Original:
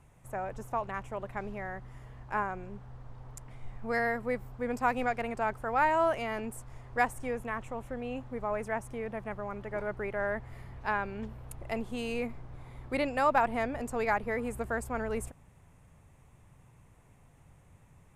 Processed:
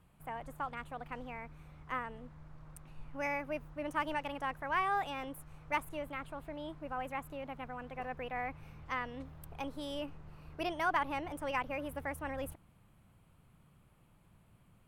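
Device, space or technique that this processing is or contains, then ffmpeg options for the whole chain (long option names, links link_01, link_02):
nightcore: -af "asetrate=53802,aresample=44100,volume=-6dB"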